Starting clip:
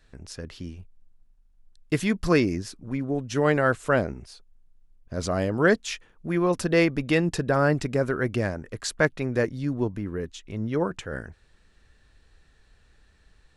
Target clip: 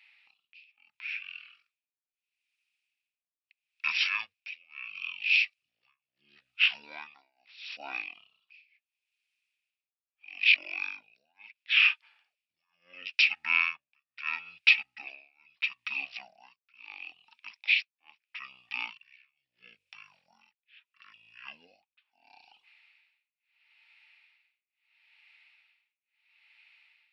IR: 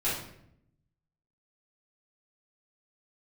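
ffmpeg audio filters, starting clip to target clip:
-af "tremolo=f=1.5:d=0.99,asetrate=22050,aresample=44100,highpass=frequency=2500:width_type=q:width=10,volume=2.5dB"

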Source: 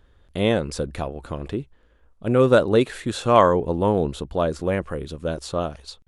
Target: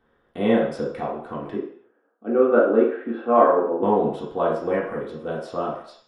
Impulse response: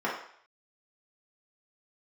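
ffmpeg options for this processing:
-filter_complex "[0:a]asettb=1/sr,asplit=3[link_01][link_02][link_03];[link_01]atrim=end=1.574[link_04];[link_02]atrim=start=1.57:end=3.83,asetpts=PTS-STARTPTS,afade=type=in:duration=0.004:curve=qsin,afade=type=out:start_time=2.256:duration=0.004:curve=qsin,highpass=frequency=240:width=0.5412,highpass=frequency=240:width=1.3066,equalizer=frequency=280:width_type=q:width=4:gain=4,equalizer=frequency=1000:width_type=q:width=4:gain=-7,equalizer=frequency=2000:width_type=q:width=4:gain=-9,lowpass=frequency=2300:width=0.5412,lowpass=frequency=2300:width=1.3066[link_05];[link_03]atrim=start=3.826[link_06];[link_04][link_05]acrossfade=duration=0.004:curve1=hsin:curve2=qsin[link_07];[link_07][link_06]acrossfade=duration=0.004:curve1=qsin:curve2=hsin[link_08];[1:a]atrim=start_sample=2205,afade=type=out:start_time=0.39:duration=0.01,atrim=end_sample=17640[link_09];[link_08][link_09]afir=irnorm=-1:irlink=0,volume=-10.5dB"

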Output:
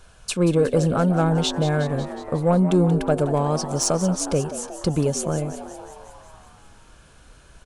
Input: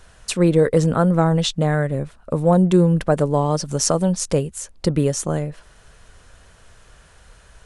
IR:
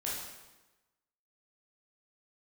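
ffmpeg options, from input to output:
-filter_complex "[0:a]acontrast=58,asuperstop=centerf=1900:order=4:qfactor=6.6,asplit=9[link_01][link_02][link_03][link_04][link_05][link_06][link_07][link_08][link_09];[link_02]adelay=182,afreqshift=97,volume=-12.5dB[link_10];[link_03]adelay=364,afreqshift=194,volume=-16.2dB[link_11];[link_04]adelay=546,afreqshift=291,volume=-20dB[link_12];[link_05]adelay=728,afreqshift=388,volume=-23.7dB[link_13];[link_06]adelay=910,afreqshift=485,volume=-27.5dB[link_14];[link_07]adelay=1092,afreqshift=582,volume=-31.2dB[link_15];[link_08]adelay=1274,afreqshift=679,volume=-35dB[link_16];[link_09]adelay=1456,afreqshift=776,volume=-38.7dB[link_17];[link_01][link_10][link_11][link_12][link_13][link_14][link_15][link_16][link_17]amix=inputs=9:normalize=0,volume=-8dB"

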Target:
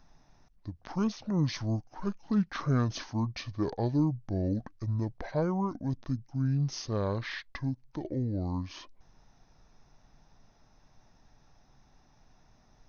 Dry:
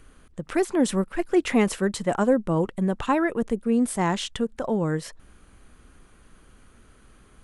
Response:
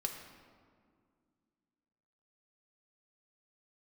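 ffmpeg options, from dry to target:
-af "asetrate=25442,aresample=44100,volume=-7.5dB"

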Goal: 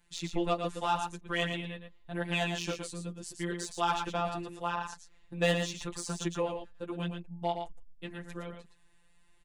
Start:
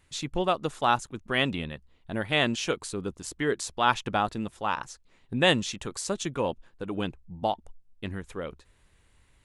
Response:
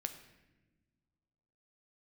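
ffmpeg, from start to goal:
-filter_complex "[0:a]asettb=1/sr,asplit=3[link_01][link_02][link_03];[link_01]atrim=end=2.704[link_04];[link_02]atrim=start=2.7:end=3.52,asetpts=PTS-STARTPTS,afade=type=in:duration=0.004:curve=qsin,afade=type=out:start_time=0.816:duration=0.004:curve=qsin,equalizer=frequency=1100:width_type=o:width=2.1:gain=-5.5[link_05];[link_03]atrim=start=3.516[link_06];[link_04][link_05]acrossfade=duration=0.004:curve1=hsin:curve2=qsin[link_07];[link_07][link_06]acrossfade=duration=0.004:curve1=qsin:curve2=hsin,afftfilt=real='hypot(re,im)*cos(PI*b)':imag='0':win_size=1024:overlap=0.75,acrossover=split=330[link_08][link_09];[link_09]asoftclip=type=tanh:threshold=-18.5dB[link_10];[link_08][link_10]amix=inputs=2:normalize=0,flanger=delay=4.5:depth=5.6:regen=-19:speed=0.82:shape=sinusoidal,aecho=1:1:115:0.473,volume=2dB"

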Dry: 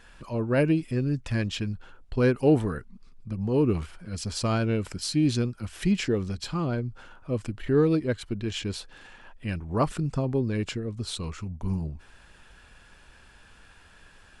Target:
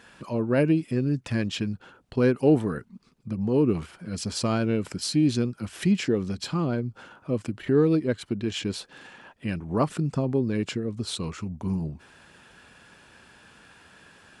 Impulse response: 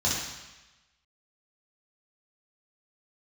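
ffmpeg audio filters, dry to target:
-filter_complex "[0:a]highpass=160,lowshelf=frequency=360:gain=6,asplit=2[link_01][link_02];[link_02]acompressor=threshold=-29dB:ratio=6,volume=-1.5dB[link_03];[link_01][link_03]amix=inputs=2:normalize=0,volume=-3dB"

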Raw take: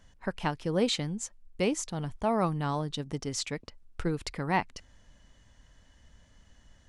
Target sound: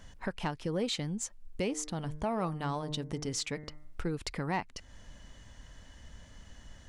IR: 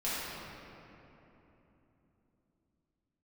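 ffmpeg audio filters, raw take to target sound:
-filter_complex "[0:a]asplit=3[link_01][link_02][link_03];[link_01]afade=type=out:start_time=1.66:duration=0.02[link_04];[link_02]bandreject=frequency=151.2:width_type=h:width=4,bandreject=frequency=302.4:width_type=h:width=4,bandreject=frequency=453.6:width_type=h:width=4,bandreject=frequency=604.8:width_type=h:width=4,bandreject=frequency=756:width_type=h:width=4,bandreject=frequency=907.2:width_type=h:width=4,bandreject=frequency=1058.4:width_type=h:width=4,bandreject=frequency=1209.6:width_type=h:width=4,bandreject=frequency=1360.8:width_type=h:width=4,bandreject=frequency=1512:width_type=h:width=4,bandreject=frequency=1663.2:width_type=h:width=4,bandreject=frequency=1814.4:width_type=h:width=4,bandreject=frequency=1965.6:width_type=h:width=4,bandreject=frequency=2116.8:width_type=h:width=4,afade=type=in:start_time=1.66:duration=0.02,afade=type=out:start_time=4.02:duration=0.02[link_05];[link_03]afade=type=in:start_time=4.02:duration=0.02[link_06];[link_04][link_05][link_06]amix=inputs=3:normalize=0,acompressor=threshold=-45dB:ratio=2,asoftclip=type=tanh:threshold=-27.5dB,volume=7dB"

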